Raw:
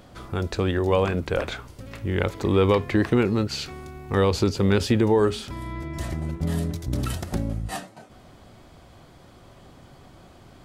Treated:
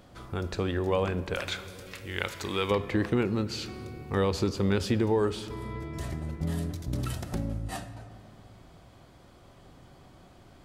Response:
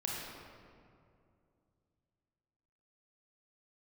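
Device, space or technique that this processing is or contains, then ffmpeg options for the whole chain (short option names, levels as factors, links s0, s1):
compressed reverb return: -filter_complex "[0:a]asettb=1/sr,asplit=3[s0][s1][s2];[s0]atrim=end=1.344[s3];[s1]atrim=start=1.34:end=2.71,asetpts=PTS-STARTPTS,afade=t=in:d=0.004:c=qsin,afade=t=out:st=1.366:d=0.004:c=qsin,tiltshelf=f=1100:g=-9[s4];[s2]atrim=start=2.706[s5];[s3][s4]acrossfade=d=0.004:c1=hsin:c2=qsin[s6];[s6][s5]acrossfade=d=0.004:c1=qsin:c2=hsin,asplit=2[s7][s8];[1:a]atrim=start_sample=2205[s9];[s8][s9]afir=irnorm=-1:irlink=0,acompressor=threshold=0.112:ratio=6,volume=0.282[s10];[s7][s10]amix=inputs=2:normalize=0,volume=0.447"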